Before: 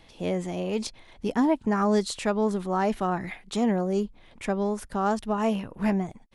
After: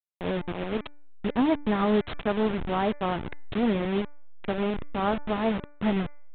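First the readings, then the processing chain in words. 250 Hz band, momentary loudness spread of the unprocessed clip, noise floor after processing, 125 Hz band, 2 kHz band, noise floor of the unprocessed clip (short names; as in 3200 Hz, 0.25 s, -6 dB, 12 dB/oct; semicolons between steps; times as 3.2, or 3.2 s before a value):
-1.0 dB, 8 LU, -47 dBFS, -0.5 dB, +1.0 dB, -54 dBFS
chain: level-crossing sampler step -25 dBFS; de-hum 292.1 Hz, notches 8; downsampling 8000 Hz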